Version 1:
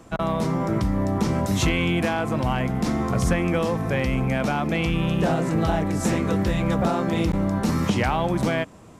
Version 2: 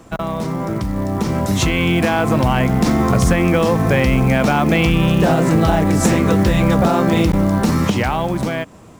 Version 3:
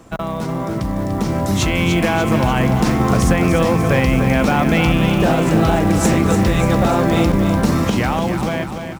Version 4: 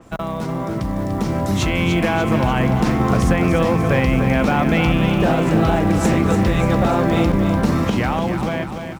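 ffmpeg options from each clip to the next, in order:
-af "acompressor=threshold=0.0631:ratio=3,acrusher=bits=7:mode=log:mix=0:aa=0.000001,dynaudnorm=f=280:g=11:m=2.51,volume=1.68"
-af "aecho=1:1:294|588|882|1176|1470|1764|2058:0.398|0.231|0.134|0.0777|0.0451|0.0261|0.0152,volume=0.891"
-af "adynamicequalizer=threshold=0.0126:dfrequency=4300:dqfactor=0.7:tfrequency=4300:tqfactor=0.7:attack=5:release=100:ratio=0.375:range=3:mode=cutabove:tftype=highshelf,volume=0.841"

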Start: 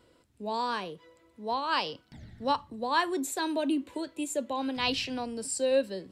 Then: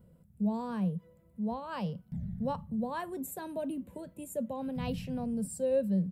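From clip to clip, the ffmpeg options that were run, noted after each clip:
-af "firequalizer=gain_entry='entry(120,0);entry(180,13);entry(290,-19);entry(510,-10);entry(990,-19);entry(4400,-29);entry(12000,-5)':delay=0.05:min_phase=1,volume=2.37"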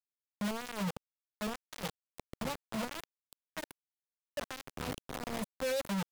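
-filter_complex "[0:a]acrusher=bits=4:mix=0:aa=0.000001,acrossover=split=540[s0][s1];[s0]aeval=exprs='val(0)*(1-0.5/2+0.5/2*cos(2*PI*9.4*n/s))':c=same[s2];[s1]aeval=exprs='val(0)*(1-0.5/2-0.5/2*cos(2*PI*9.4*n/s))':c=same[s3];[s2][s3]amix=inputs=2:normalize=0,aeval=exprs='0.0501*(abs(mod(val(0)/0.0501+3,4)-2)-1)':c=same,volume=0.75"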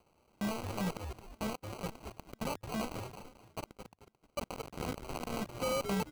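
-filter_complex "[0:a]acompressor=mode=upward:threshold=0.00398:ratio=2.5,asplit=2[s0][s1];[s1]asplit=4[s2][s3][s4][s5];[s2]adelay=220,afreqshift=-110,volume=0.422[s6];[s3]adelay=440,afreqshift=-220,volume=0.148[s7];[s4]adelay=660,afreqshift=-330,volume=0.0519[s8];[s5]adelay=880,afreqshift=-440,volume=0.018[s9];[s6][s7][s8][s9]amix=inputs=4:normalize=0[s10];[s0][s10]amix=inputs=2:normalize=0,acrusher=samples=25:mix=1:aa=0.000001"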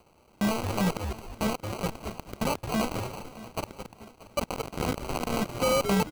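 -af "aecho=1:1:631|1262|1893|2524:0.126|0.0604|0.029|0.0139,volume=2.82"

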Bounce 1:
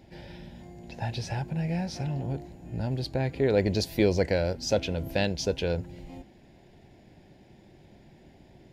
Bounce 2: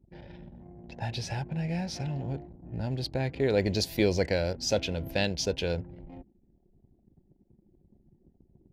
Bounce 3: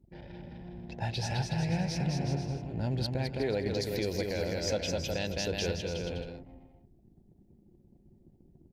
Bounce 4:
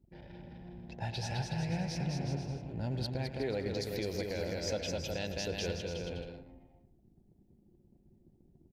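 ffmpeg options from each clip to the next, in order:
-af "anlmdn=0.0251,adynamicequalizer=threshold=0.00631:dfrequency=2000:dqfactor=0.7:tfrequency=2000:tqfactor=0.7:attack=5:release=100:ratio=0.375:range=2:mode=boostabove:tftype=highshelf,volume=0.794"
-af "aecho=1:1:210|367.5|485.6|574.2|640.7:0.631|0.398|0.251|0.158|0.1,alimiter=limit=0.0891:level=0:latency=1:release=423"
-filter_complex "[0:a]asplit=2[s0][s1];[s1]adelay=110,highpass=300,lowpass=3400,asoftclip=type=hard:threshold=0.0355,volume=0.282[s2];[s0][s2]amix=inputs=2:normalize=0,volume=0.631"

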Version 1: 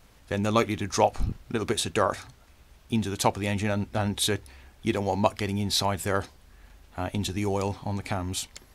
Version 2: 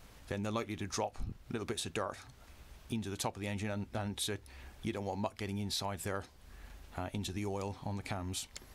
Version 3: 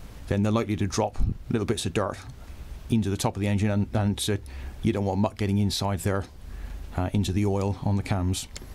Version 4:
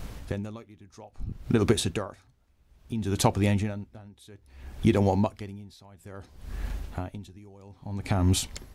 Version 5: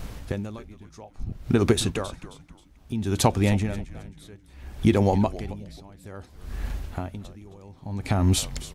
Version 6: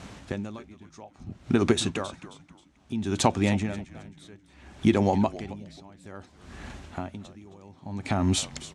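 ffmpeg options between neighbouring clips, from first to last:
-af "acompressor=threshold=0.01:ratio=2.5"
-af "lowshelf=f=430:g=9,volume=2.24"
-af "aeval=exprs='val(0)*pow(10,-29*(0.5-0.5*cos(2*PI*0.6*n/s))/20)':c=same,volume=1.58"
-filter_complex "[0:a]asplit=4[s0][s1][s2][s3];[s1]adelay=267,afreqshift=-130,volume=0.178[s4];[s2]adelay=534,afreqshift=-260,volume=0.0603[s5];[s3]adelay=801,afreqshift=-390,volume=0.0207[s6];[s0][s4][s5][s6]amix=inputs=4:normalize=0,volume=1.33"
-af "highpass=120,equalizer=f=130:t=q:w=4:g=-5,equalizer=f=470:t=q:w=4:g=-5,equalizer=f=4800:t=q:w=4:g=-3,lowpass=f=8500:w=0.5412,lowpass=f=8500:w=1.3066"

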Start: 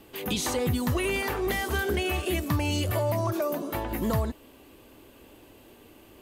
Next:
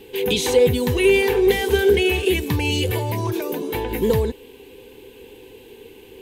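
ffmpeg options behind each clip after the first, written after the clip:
-af "superequalizer=7b=3.55:8b=0.316:10b=0.316:12b=1.78:13b=1.78,volume=1.68"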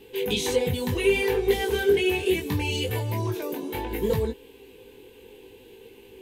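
-af "flanger=delay=17.5:depth=4.2:speed=0.67,volume=0.75"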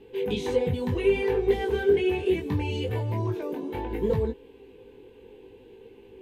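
-af "lowpass=f=1200:p=1"

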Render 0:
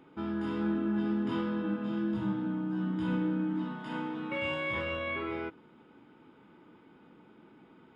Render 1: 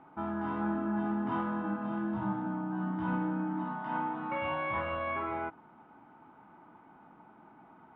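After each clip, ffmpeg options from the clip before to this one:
-af "lowpass=1300,lowshelf=f=590:t=q:w=3:g=-6.5,volume=1.88"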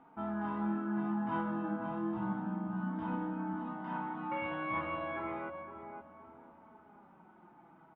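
-filter_complex "[0:a]asplit=2[s0][s1];[s1]adelay=515,lowpass=f=1100:p=1,volume=0.447,asplit=2[s2][s3];[s3]adelay=515,lowpass=f=1100:p=1,volume=0.44,asplit=2[s4][s5];[s5]adelay=515,lowpass=f=1100:p=1,volume=0.44,asplit=2[s6][s7];[s7]adelay=515,lowpass=f=1100:p=1,volume=0.44,asplit=2[s8][s9];[s9]adelay=515,lowpass=f=1100:p=1,volume=0.44[s10];[s0][s2][s4][s6][s8][s10]amix=inputs=6:normalize=0,flanger=delay=4.2:depth=2.2:regen=36:speed=0.31:shape=triangular"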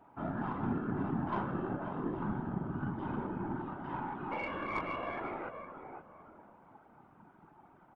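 -af "afftfilt=real='hypot(re,im)*cos(2*PI*random(0))':imag='hypot(re,im)*sin(2*PI*random(1))':win_size=512:overlap=0.75,aeval=exprs='0.0376*(cos(1*acos(clip(val(0)/0.0376,-1,1)))-cos(1*PI/2))+0.00237*(cos(3*acos(clip(val(0)/0.0376,-1,1)))-cos(3*PI/2))+0.000841*(cos(6*acos(clip(val(0)/0.0376,-1,1)))-cos(6*PI/2))':c=same,volume=2.24"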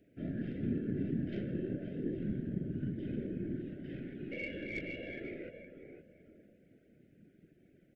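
-af "asuperstop=centerf=1000:order=8:qfactor=0.8"

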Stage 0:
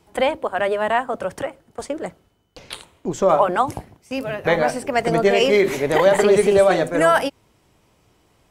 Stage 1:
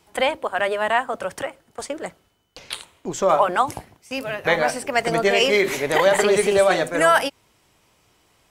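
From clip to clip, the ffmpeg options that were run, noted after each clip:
-af "tiltshelf=f=790:g=-4.5,volume=0.891"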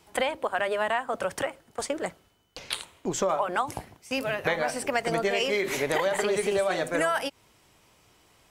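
-af "acompressor=threshold=0.0708:ratio=6"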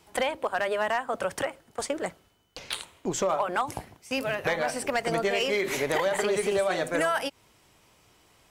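-af "volume=7.94,asoftclip=hard,volume=0.126"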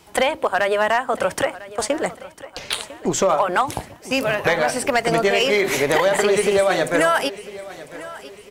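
-af "aecho=1:1:1000|2000|3000:0.133|0.056|0.0235,volume=2.66"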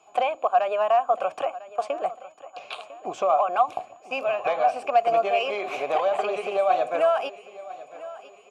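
-filter_complex "[0:a]aeval=exprs='val(0)+0.00794*sin(2*PI*6900*n/s)':c=same,asplit=3[s0][s1][s2];[s0]bandpass=f=730:t=q:w=8,volume=1[s3];[s1]bandpass=f=1090:t=q:w=8,volume=0.501[s4];[s2]bandpass=f=2440:t=q:w=8,volume=0.355[s5];[s3][s4][s5]amix=inputs=3:normalize=0,volume=1.68"

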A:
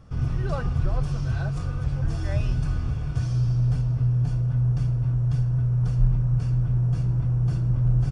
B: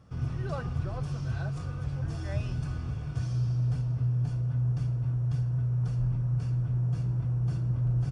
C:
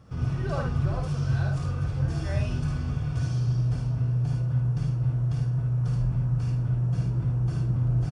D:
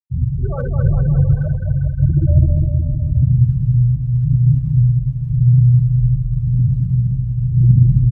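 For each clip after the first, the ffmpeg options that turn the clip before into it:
-af "highpass=70,volume=0.562"
-af "aecho=1:1:53|74:0.596|0.473,volume=1.5"
-af "afftfilt=real='re*gte(hypot(re,im),0.0891)':imag='im*gte(hypot(re,im),0.0891)':win_size=1024:overlap=0.75,aphaser=in_gain=1:out_gain=1:delay=2.2:decay=0.62:speed=0.9:type=sinusoidal,aecho=1:1:210|399|569.1|722.2|860:0.631|0.398|0.251|0.158|0.1,volume=1.88"

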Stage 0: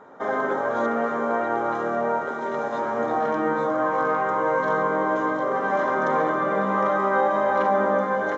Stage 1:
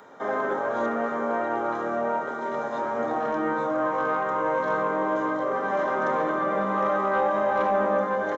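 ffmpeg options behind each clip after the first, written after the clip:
-filter_complex "[0:a]acrossover=split=150|2300[s0][s1][s2];[s2]acompressor=mode=upward:threshold=0.00282:ratio=2.5[s3];[s0][s1][s3]amix=inputs=3:normalize=0,asoftclip=type=tanh:threshold=0.299,asplit=2[s4][s5];[s5]adelay=29,volume=0.266[s6];[s4][s6]amix=inputs=2:normalize=0,volume=0.75"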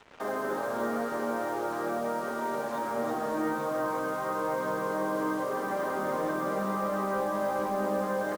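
-filter_complex "[0:a]acrossover=split=400[s0][s1];[s1]alimiter=limit=0.0668:level=0:latency=1:release=207[s2];[s0][s2]amix=inputs=2:normalize=0,acrusher=bits=6:mix=0:aa=0.5,aecho=1:1:320:0.355,volume=0.794"

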